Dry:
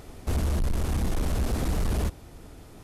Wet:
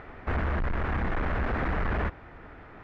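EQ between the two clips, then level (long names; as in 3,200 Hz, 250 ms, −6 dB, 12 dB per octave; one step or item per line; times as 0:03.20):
Chebyshev low-pass filter 1,800 Hz, order 3
tilt shelving filter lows −9.5 dB, about 850 Hz
+6.0 dB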